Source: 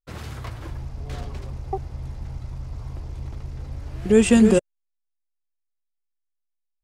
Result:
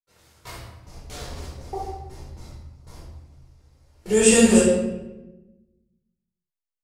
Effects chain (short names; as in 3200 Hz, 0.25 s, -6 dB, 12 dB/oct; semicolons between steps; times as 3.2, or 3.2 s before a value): gate with hold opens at -23 dBFS; tone controls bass -9 dB, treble +12 dB; reverb RT60 1.0 s, pre-delay 9 ms, DRR -7.5 dB; gain -8.5 dB